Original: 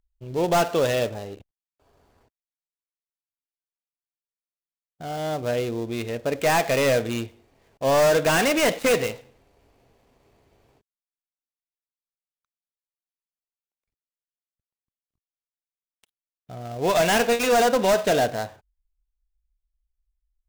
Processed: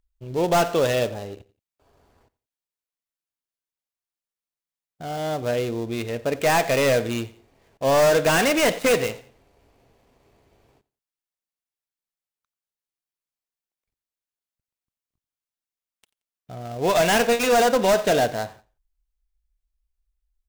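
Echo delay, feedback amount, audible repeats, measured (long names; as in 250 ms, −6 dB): 88 ms, 30%, 2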